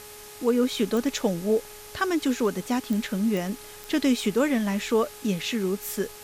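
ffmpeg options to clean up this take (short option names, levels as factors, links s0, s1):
-af "adeclick=t=4,bandreject=f=418.9:t=h:w=4,bandreject=f=837.8:t=h:w=4,bandreject=f=1256.7:t=h:w=4,bandreject=f=1675.6:t=h:w=4,bandreject=f=2094.5:t=h:w=4,bandreject=f=2513.4:t=h:w=4,afwtdn=0.0063"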